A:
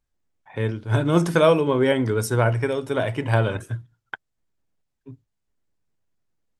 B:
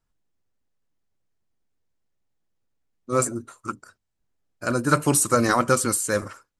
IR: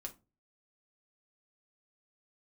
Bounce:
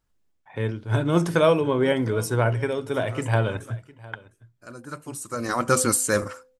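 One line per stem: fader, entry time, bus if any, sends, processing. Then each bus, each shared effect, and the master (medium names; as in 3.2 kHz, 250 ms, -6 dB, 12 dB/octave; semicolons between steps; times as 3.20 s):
-2.0 dB, 0.00 s, no send, echo send -21 dB, none
+2.0 dB, 0.00 s, no send, no echo send, de-hum 256.1 Hz, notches 3; auto duck -19 dB, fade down 0.20 s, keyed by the first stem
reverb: none
echo: delay 707 ms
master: none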